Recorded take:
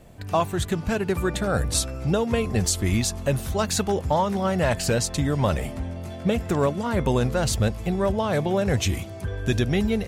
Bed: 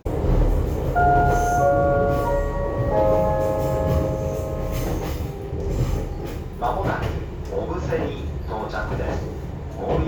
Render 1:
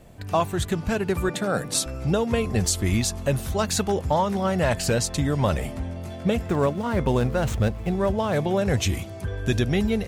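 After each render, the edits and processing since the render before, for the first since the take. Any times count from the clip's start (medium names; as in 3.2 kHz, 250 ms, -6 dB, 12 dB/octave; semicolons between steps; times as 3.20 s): 1.29–1.86 s: high-pass 140 Hz 24 dB/octave; 6.48–8.36 s: median filter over 9 samples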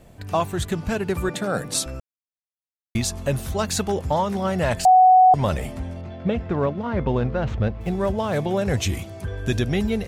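2.00–2.95 s: mute; 4.85–5.34 s: bleep 743 Hz -9 dBFS; 6.01–7.81 s: distance through air 220 m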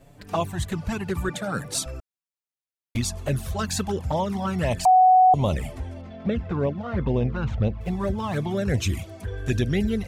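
touch-sensitive flanger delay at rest 7.8 ms, full sweep at -16.5 dBFS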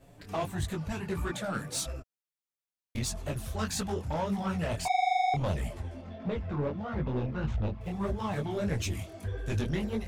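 saturation -22.5 dBFS, distortion -7 dB; detune thickener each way 55 cents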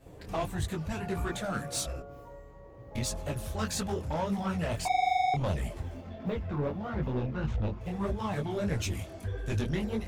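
add bed -26.5 dB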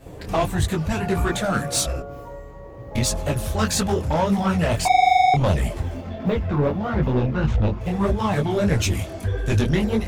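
trim +11 dB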